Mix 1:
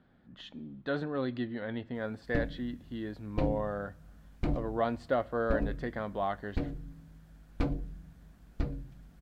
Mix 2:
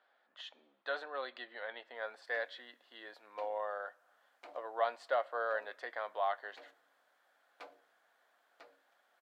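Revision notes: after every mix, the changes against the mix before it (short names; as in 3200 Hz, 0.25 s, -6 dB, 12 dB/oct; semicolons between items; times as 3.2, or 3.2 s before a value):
background -9.5 dB; master: add HPF 600 Hz 24 dB/oct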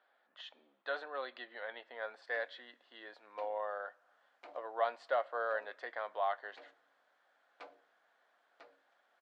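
master: add air absorption 75 m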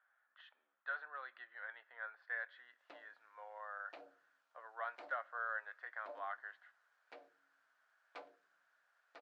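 speech: add band-pass 1500 Hz, Q 2.9; background: entry +0.55 s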